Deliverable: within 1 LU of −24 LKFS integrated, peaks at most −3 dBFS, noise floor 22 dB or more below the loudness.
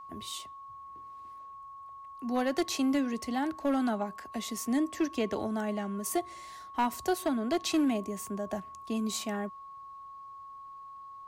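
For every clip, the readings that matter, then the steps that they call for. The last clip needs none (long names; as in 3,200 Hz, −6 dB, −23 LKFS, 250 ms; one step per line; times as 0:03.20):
share of clipped samples 0.7%; peaks flattened at −22.0 dBFS; interfering tone 1,100 Hz; level of the tone −44 dBFS; integrated loudness −32.0 LKFS; sample peak −22.0 dBFS; target loudness −24.0 LKFS
→ clipped peaks rebuilt −22 dBFS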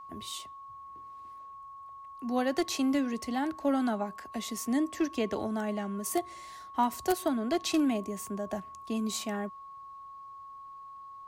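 share of clipped samples 0.0%; interfering tone 1,100 Hz; level of the tone −44 dBFS
→ notch filter 1,100 Hz, Q 30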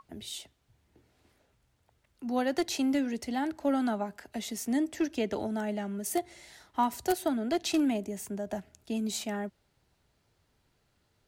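interfering tone none found; integrated loudness −32.0 LKFS; sample peak −13.0 dBFS; target loudness −24.0 LKFS
→ level +8 dB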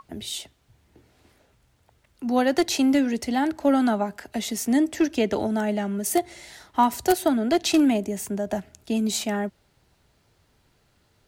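integrated loudness −24.0 LKFS; sample peak −5.0 dBFS; background noise floor −65 dBFS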